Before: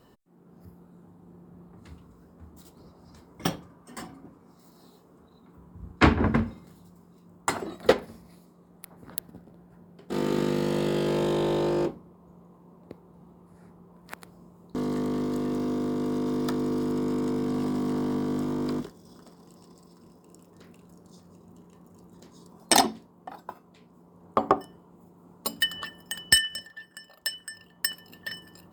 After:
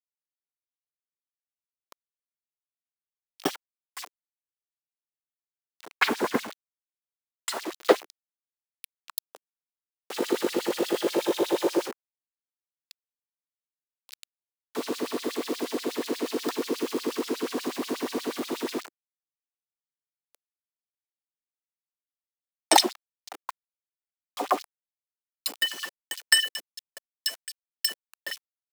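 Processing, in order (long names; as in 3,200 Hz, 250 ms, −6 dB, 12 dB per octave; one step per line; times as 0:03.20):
bit-depth reduction 6 bits, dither none
auto-filter high-pass sine 8.3 Hz 320–4,500 Hz
level −1 dB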